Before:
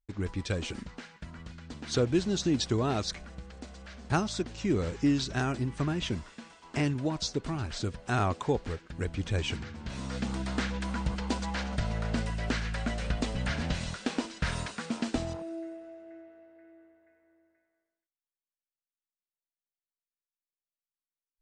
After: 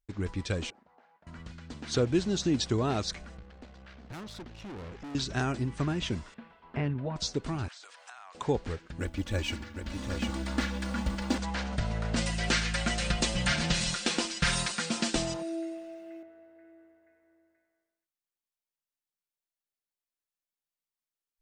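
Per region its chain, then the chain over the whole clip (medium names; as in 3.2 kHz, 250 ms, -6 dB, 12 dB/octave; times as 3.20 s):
0.70–1.27 s: band-pass filter 750 Hz, Q 3.5 + compression 2:1, threshold -59 dBFS
3.37–5.15 s: low-pass 3.8 kHz + valve stage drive 40 dB, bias 0.7
6.34–7.16 s: distance through air 450 m + band-stop 310 Hz, Q 5.4
7.68–8.35 s: high-pass 800 Hz 24 dB/octave + compression 4:1, threshold -50 dBFS + transient shaper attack +4 dB, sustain +9 dB
9.00–11.38 s: companding laws mixed up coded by A + comb 3.5 ms, depth 69% + delay 759 ms -6.5 dB
12.16–16.23 s: treble shelf 2.4 kHz +11.5 dB + comb 5.7 ms, depth 69%
whole clip: none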